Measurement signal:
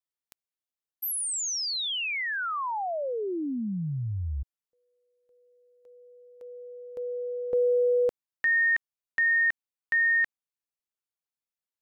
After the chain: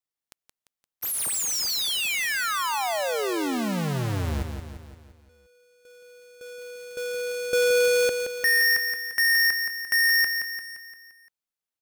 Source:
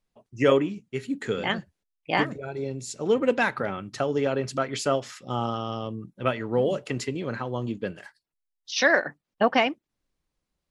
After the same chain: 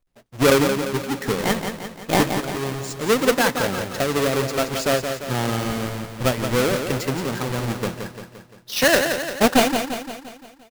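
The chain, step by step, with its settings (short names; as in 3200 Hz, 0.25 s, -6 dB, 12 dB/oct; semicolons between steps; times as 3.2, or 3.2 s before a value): half-waves squared off; on a send: feedback echo 0.173 s, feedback 53%, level -7 dB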